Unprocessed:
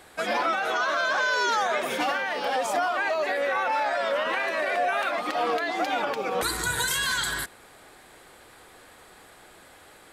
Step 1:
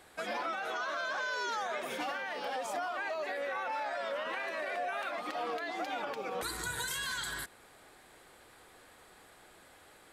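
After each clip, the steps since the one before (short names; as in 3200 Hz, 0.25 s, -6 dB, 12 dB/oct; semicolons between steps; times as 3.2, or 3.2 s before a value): compressor 1.5:1, threshold -32 dBFS, peak gain reduction 4 dB; gain -7 dB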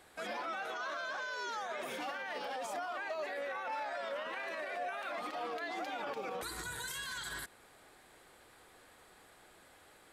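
limiter -35.5 dBFS, peak gain reduction 10.5 dB; upward expander 1.5:1, over -55 dBFS; gain +4.5 dB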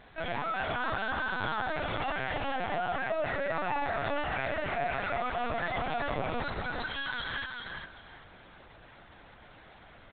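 feedback echo 0.397 s, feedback 24%, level -4.5 dB; LPC vocoder at 8 kHz pitch kept; gain +6.5 dB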